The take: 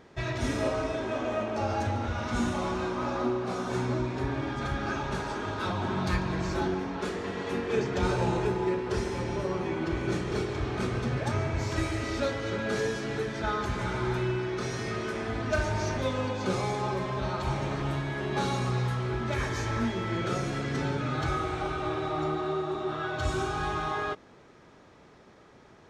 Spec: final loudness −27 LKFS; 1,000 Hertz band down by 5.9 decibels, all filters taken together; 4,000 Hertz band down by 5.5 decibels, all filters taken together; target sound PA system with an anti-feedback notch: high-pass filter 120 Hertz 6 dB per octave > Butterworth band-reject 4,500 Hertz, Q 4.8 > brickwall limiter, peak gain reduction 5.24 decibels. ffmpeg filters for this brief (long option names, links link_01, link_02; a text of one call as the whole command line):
ffmpeg -i in.wav -af "highpass=frequency=120:poles=1,asuperstop=centerf=4500:order=8:qfactor=4.8,equalizer=frequency=1000:width_type=o:gain=-7.5,equalizer=frequency=4000:width_type=o:gain=-5.5,volume=7dB,alimiter=limit=-16.5dB:level=0:latency=1" out.wav